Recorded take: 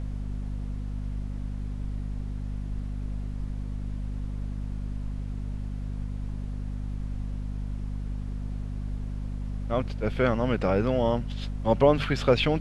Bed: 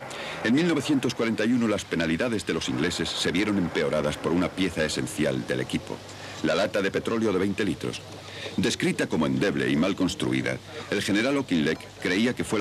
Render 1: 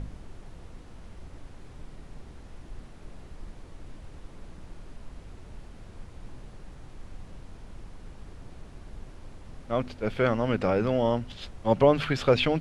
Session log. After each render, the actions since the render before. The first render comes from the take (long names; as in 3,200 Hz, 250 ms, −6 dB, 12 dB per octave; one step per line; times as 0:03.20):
hum removal 50 Hz, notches 5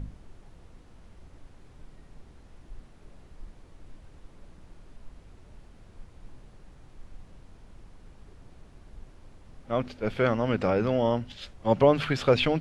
noise reduction from a noise print 6 dB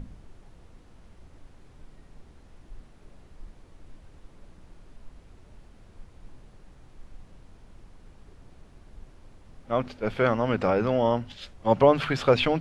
mains-hum notches 50/100/150 Hz
dynamic equaliser 980 Hz, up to +4 dB, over −41 dBFS, Q 0.97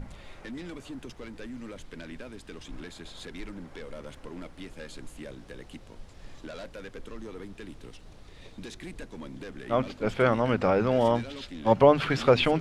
mix in bed −17.5 dB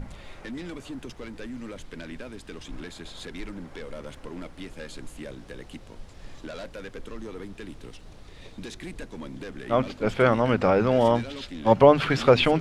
level +3 dB